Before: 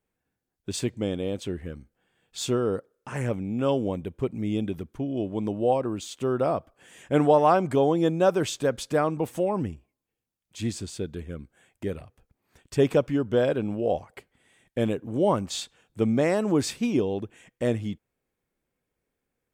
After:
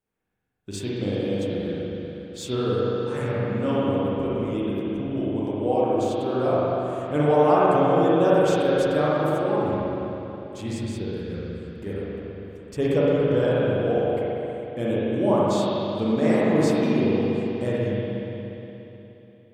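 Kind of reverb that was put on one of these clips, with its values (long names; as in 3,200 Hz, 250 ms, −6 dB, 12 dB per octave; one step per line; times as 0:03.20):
spring reverb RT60 3.4 s, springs 40/59 ms, chirp 60 ms, DRR −8 dB
level −5 dB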